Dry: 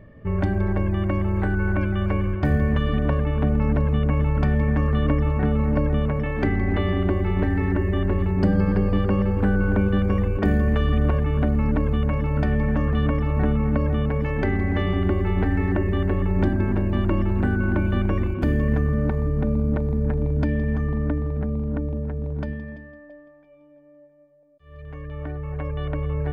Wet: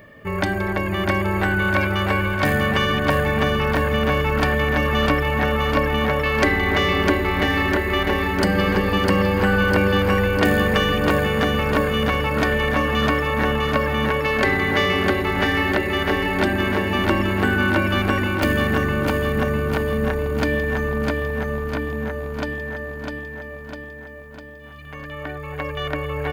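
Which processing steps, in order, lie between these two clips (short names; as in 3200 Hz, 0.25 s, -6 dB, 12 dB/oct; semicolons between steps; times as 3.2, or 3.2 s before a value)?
tracing distortion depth 0.043 ms; tilt +4 dB/oct; feedback echo 0.652 s, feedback 58%, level -4 dB; gain +8 dB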